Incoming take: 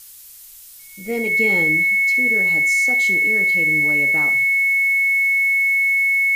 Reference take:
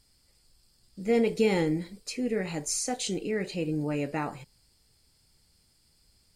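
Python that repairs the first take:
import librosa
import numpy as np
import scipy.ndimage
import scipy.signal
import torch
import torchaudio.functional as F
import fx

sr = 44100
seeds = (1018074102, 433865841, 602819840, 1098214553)

y = fx.notch(x, sr, hz=2200.0, q=30.0)
y = fx.noise_reduce(y, sr, print_start_s=0.12, print_end_s=0.62, reduce_db=24.0)
y = fx.fix_echo_inverse(y, sr, delay_ms=71, level_db=-15.0)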